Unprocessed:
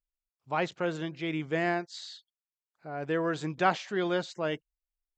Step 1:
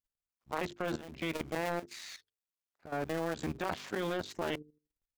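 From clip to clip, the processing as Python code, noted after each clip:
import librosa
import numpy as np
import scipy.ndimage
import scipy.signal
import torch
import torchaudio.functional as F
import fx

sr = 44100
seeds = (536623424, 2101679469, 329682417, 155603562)

y = fx.cycle_switch(x, sr, every=2, mode='muted')
y = fx.hum_notches(y, sr, base_hz=50, count=9)
y = fx.level_steps(y, sr, step_db=13)
y = y * librosa.db_to_amplitude(5.0)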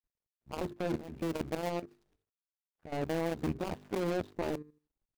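y = scipy.signal.medfilt(x, 41)
y = y * librosa.db_to_amplitude(4.0)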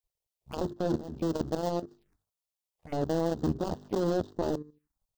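y = fx.env_phaser(x, sr, low_hz=250.0, high_hz=2300.0, full_db=-38.0)
y = y * librosa.db_to_amplitude(5.0)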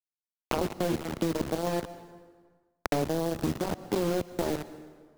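y = fx.quant_dither(x, sr, seeds[0], bits=6, dither='none')
y = fx.rev_plate(y, sr, seeds[1], rt60_s=0.86, hf_ratio=0.8, predelay_ms=100, drr_db=18.5)
y = fx.band_squash(y, sr, depth_pct=100)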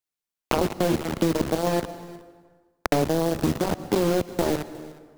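y = x + 10.0 ** (-20.5 / 20.0) * np.pad(x, (int(361 * sr / 1000.0), 0))[:len(x)]
y = y * librosa.db_to_amplitude(6.0)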